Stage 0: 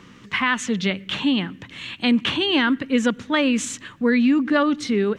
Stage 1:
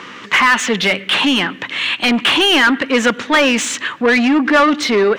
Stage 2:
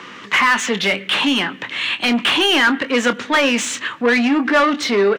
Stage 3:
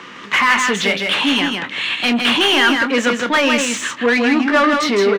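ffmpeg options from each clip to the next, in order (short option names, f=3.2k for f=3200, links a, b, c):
-filter_complex "[0:a]asplit=2[a][b];[b]highpass=f=720:p=1,volume=22dB,asoftclip=type=tanh:threshold=-6.5dB[c];[a][c]amix=inputs=2:normalize=0,lowpass=f=3.7k:p=1,volume=-6dB,bass=f=250:g=-7,treble=f=4k:g=-3,volume=3.5dB"
-filter_complex "[0:a]acrossover=split=160|1100[a][b][c];[a]asoftclip=type=tanh:threshold=-34.5dB[d];[d][b][c]amix=inputs=3:normalize=0,asplit=2[e][f];[f]adelay=25,volume=-11dB[g];[e][g]amix=inputs=2:normalize=0,volume=-3dB"
-af "aecho=1:1:160:0.596"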